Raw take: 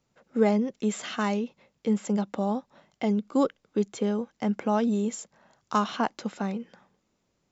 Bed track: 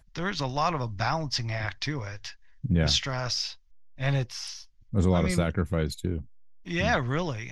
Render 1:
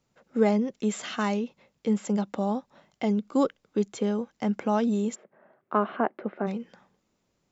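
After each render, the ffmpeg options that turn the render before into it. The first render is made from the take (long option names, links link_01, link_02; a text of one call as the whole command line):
ffmpeg -i in.wav -filter_complex "[0:a]asplit=3[link_01][link_02][link_03];[link_01]afade=type=out:start_time=5.14:duration=0.02[link_04];[link_02]highpass=180,equalizer=frequency=380:width_type=q:width=4:gain=9,equalizer=frequency=610:width_type=q:width=4:gain=6,equalizer=frequency=930:width_type=q:width=4:gain=-4,lowpass=frequency=2100:width=0.5412,lowpass=frequency=2100:width=1.3066,afade=type=in:start_time=5.14:duration=0.02,afade=type=out:start_time=6.46:duration=0.02[link_05];[link_03]afade=type=in:start_time=6.46:duration=0.02[link_06];[link_04][link_05][link_06]amix=inputs=3:normalize=0" out.wav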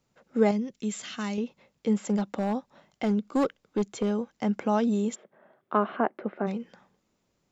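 ffmpeg -i in.wav -filter_complex "[0:a]asettb=1/sr,asplit=3[link_01][link_02][link_03];[link_01]atrim=end=0.514[link_04];[link_02]atrim=start=0.51:end=1.38,asetpts=PTS-STARTPTS,afade=type=in:duration=0.004:curve=qsin,afade=type=out:start_time=0.866:duration=0.004:curve=qsin,equalizer=frequency=720:width_type=o:width=2.7:gain=-10[link_05];[link_03]atrim=start=1.376[link_06];[link_04][link_05]acrossfade=duration=0.004:curve1=hsin:curve2=qsin[link_07];[link_07][link_06]acrossfade=duration=0.004:curve1=qsin:curve2=hsin,asettb=1/sr,asplit=3[link_08][link_09][link_10];[link_08]atrim=end=2.064[link_11];[link_09]atrim=start=2.06:end=4.11,asetpts=PTS-STARTPTS,afade=type=in:duration=0.004:curve=qsin,afade=type=out:start_time=2.046:duration=0.004:curve=qsin,asoftclip=type=hard:threshold=-20dB[link_12];[link_10]atrim=start=4.106[link_13];[link_11][link_12]acrossfade=duration=0.004:curve1=hsin:curve2=qsin[link_14];[link_14][link_13]acrossfade=duration=0.004:curve1=qsin:curve2=hsin,asettb=1/sr,asplit=3[link_15][link_16][link_17];[link_15]atrim=end=5.124[link_18];[link_16]atrim=start=5.12:end=5.77,asetpts=PTS-STARTPTS,afade=type=in:duration=0.004:curve=qsin,afade=type=out:start_time=0.646:duration=0.004:curve=qsin,equalizer=frequency=3400:width_type=o:width=0.31:gain=9[link_19];[link_17]atrim=start=5.766[link_20];[link_18][link_19]acrossfade=duration=0.004:curve1=hsin:curve2=qsin[link_21];[link_21][link_20]acrossfade=duration=0.004:curve1=qsin:curve2=hsin" out.wav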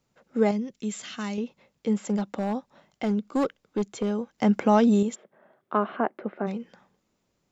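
ffmpeg -i in.wav -filter_complex "[0:a]asettb=1/sr,asplit=3[link_01][link_02][link_03];[link_01]atrim=end=4.384[link_04];[link_02]atrim=start=4.38:end=5.03,asetpts=PTS-STARTPTS,afade=type=in:duration=0.004:curve=qsin,afade=type=out:start_time=0.646:duration=0.004:curve=qsin,acontrast=50[link_05];[link_03]atrim=start=5.026[link_06];[link_04][link_05]acrossfade=duration=0.004:curve1=hsin:curve2=qsin[link_07];[link_07][link_06]acrossfade=duration=0.004:curve1=qsin:curve2=hsin" out.wav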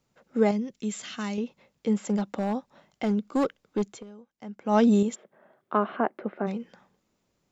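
ffmpeg -i in.wav -filter_complex "[0:a]asplit=3[link_01][link_02][link_03];[link_01]atrim=end=4.04,asetpts=PTS-STARTPTS,afade=type=out:start_time=3.89:duration=0.15:silence=0.112202[link_04];[link_02]atrim=start=4.04:end=4.64,asetpts=PTS-STARTPTS,volume=-19dB[link_05];[link_03]atrim=start=4.64,asetpts=PTS-STARTPTS,afade=type=in:duration=0.15:silence=0.112202[link_06];[link_04][link_05][link_06]concat=n=3:v=0:a=1" out.wav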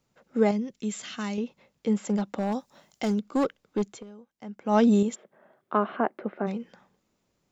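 ffmpeg -i in.wav -filter_complex "[0:a]asettb=1/sr,asplit=3[link_01][link_02][link_03];[link_01]atrim=end=2.524[link_04];[link_02]atrim=start=2.52:end=3.2,asetpts=PTS-STARTPTS,afade=type=in:duration=0.004:curve=qsin,afade=type=out:start_time=0.676:duration=0.004:curve=qsin,bass=frequency=250:gain=-1,treble=frequency=4000:gain=12[link_05];[link_03]atrim=start=3.196[link_06];[link_04][link_05]acrossfade=duration=0.004:curve1=hsin:curve2=qsin[link_07];[link_07][link_06]acrossfade=duration=0.004:curve1=qsin:curve2=hsin" out.wav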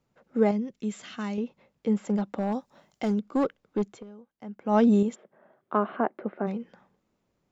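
ffmpeg -i in.wav -af "highshelf=frequency=3200:gain=-10" out.wav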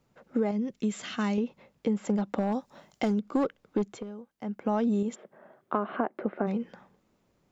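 ffmpeg -i in.wav -filter_complex "[0:a]asplit=2[link_01][link_02];[link_02]alimiter=limit=-20dB:level=0:latency=1:release=152,volume=-2dB[link_03];[link_01][link_03]amix=inputs=2:normalize=0,acompressor=threshold=-24dB:ratio=6" out.wav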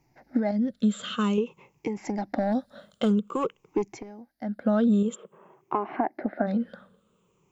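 ffmpeg -i in.wav -af "afftfilt=real='re*pow(10,15/40*sin(2*PI*(0.73*log(max(b,1)*sr/1024/100)/log(2)-(-0.51)*(pts-256)/sr)))':imag='im*pow(10,15/40*sin(2*PI*(0.73*log(max(b,1)*sr/1024/100)/log(2)-(-0.51)*(pts-256)/sr)))':win_size=1024:overlap=0.75" out.wav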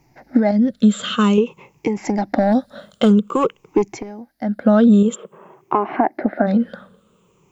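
ffmpeg -i in.wav -af "volume=10dB,alimiter=limit=-3dB:level=0:latency=1" out.wav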